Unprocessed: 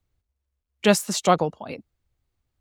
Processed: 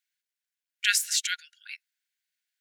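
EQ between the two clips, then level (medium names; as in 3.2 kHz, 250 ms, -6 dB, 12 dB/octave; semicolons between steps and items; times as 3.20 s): brick-wall FIR high-pass 1.4 kHz; +2.0 dB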